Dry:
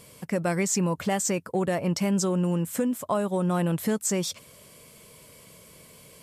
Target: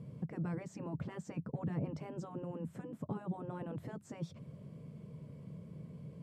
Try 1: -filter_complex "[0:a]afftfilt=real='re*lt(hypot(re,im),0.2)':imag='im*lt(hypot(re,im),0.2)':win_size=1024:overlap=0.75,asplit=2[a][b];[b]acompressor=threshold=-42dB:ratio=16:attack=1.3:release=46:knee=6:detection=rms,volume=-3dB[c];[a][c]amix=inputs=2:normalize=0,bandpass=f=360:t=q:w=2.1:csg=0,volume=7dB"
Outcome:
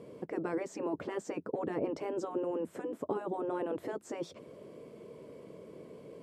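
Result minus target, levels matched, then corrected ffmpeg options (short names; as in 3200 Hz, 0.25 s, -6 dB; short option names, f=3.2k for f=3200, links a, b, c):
125 Hz band -17.0 dB
-filter_complex "[0:a]afftfilt=real='re*lt(hypot(re,im),0.2)':imag='im*lt(hypot(re,im),0.2)':win_size=1024:overlap=0.75,asplit=2[a][b];[b]acompressor=threshold=-42dB:ratio=16:attack=1.3:release=46:knee=6:detection=rms,volume=-3dB[c];[a][c]amix=inputs=2:normalize=0,bandpass=f=150:t=q:w=2.1:csg=0,volume=7dB"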